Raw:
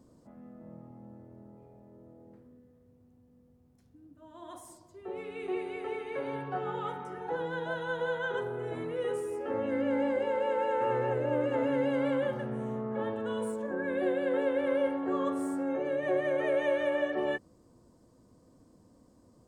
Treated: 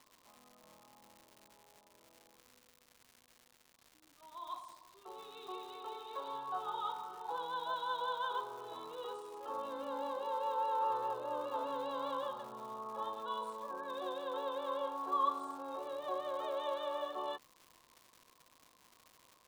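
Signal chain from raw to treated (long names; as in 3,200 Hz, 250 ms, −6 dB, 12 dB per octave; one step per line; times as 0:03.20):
pair of resonant band-passes 2,000 Hz, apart 1.8 octaves
surface crackle 280 per second −56 dBFS
level +8.5 dB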